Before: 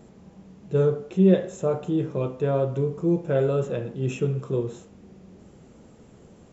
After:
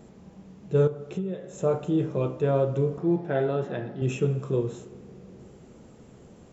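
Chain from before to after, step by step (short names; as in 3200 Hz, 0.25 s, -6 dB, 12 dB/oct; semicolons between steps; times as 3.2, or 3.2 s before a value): 0.87–1.58 compressor 16:1, threshold -28 dBFS, peak gain reduction 16.5 dB; 2.98–4.02 speaker cabinet 120–4900 Hz, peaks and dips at 150 Hz -5 dB, 500 Hz -10 dB, 760 Hz +9 dB, 1200 Hz -4 dB, 1800 Hz +7 dB, 2600 Hz -5 dB; reverb RT60 4.0 s, pre-delay 28 ms, DRR 18.5 dB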